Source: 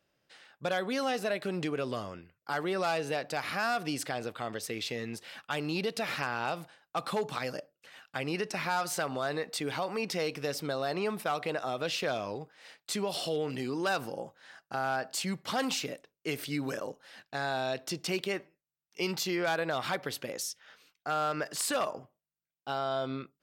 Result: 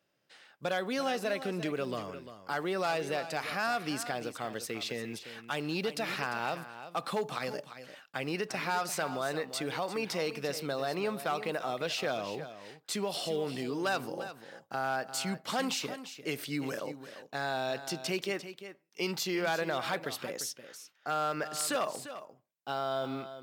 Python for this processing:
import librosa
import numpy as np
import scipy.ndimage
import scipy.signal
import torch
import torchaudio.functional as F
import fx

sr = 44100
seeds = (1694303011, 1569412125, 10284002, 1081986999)

y = fx.block_float(x, sr, bits=7)
y = scipy.signal.sosfilt(scipy.signal.butter(2, 110.0, 'highpass', fs=sr, output='sos'), y)
y = y + 10.0 ** (-12.0 / 20.0) * np.pad(y, (int(347 * sr / 1000.0), 0))[:len(y)]
y = F.gain(torch.from_numpy(y), -1.0).numpy()